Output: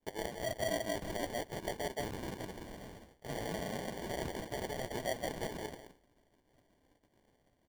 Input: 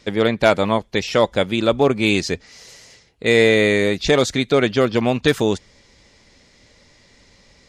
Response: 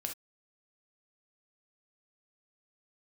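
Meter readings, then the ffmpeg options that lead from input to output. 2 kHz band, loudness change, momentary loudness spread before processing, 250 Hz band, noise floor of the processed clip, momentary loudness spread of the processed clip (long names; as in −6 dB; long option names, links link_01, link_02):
−22.5 dB, −21.5 dB, 7 LU, −23.0 dB, −74 dBFS, 12 LU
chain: -filter_complex "[0:a]aderivative,asplit=2[link_01][link_02];[link_02]aecho=0:1:170|340|510:0.631|0.126|0.0252[link_03];[link_01][link_03]amix=inputs=2:normalize=0,acompressor=threshold=-38dB:ratio=2,acrusher=bits=2:mode=log:mix=0:aa=0.000001,aecho=1:1:2.9:0.62,alimiter=level_in=2.5dB:limit=-24dB:level=0:latency=1:release=23,volume=-2.5dB,equalizer=frequency=690:width_type=o:width=1:gain=14.5,acrusher=samples=34:mix=1:aa=0.000001,agate=range=-33dB:threshold=-47dB:ratio=3:detection=peak,volume=-4dB"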